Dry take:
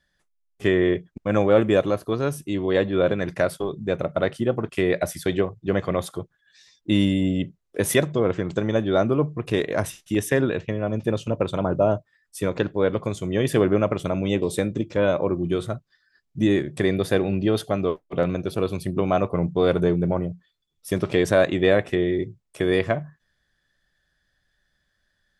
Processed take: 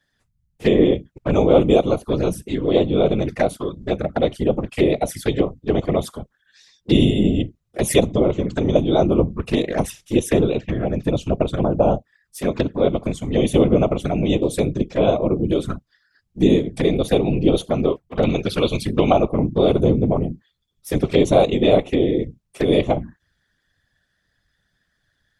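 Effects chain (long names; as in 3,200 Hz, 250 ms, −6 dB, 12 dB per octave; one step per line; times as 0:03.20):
0:18.23–0:19.13: parametric band 3,300 Hz +11 dB 2.7 octaves
flanger swept by the level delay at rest 9.9 ms, full sweep at −19.5 dBFS
random phases in short frames
level +5 dB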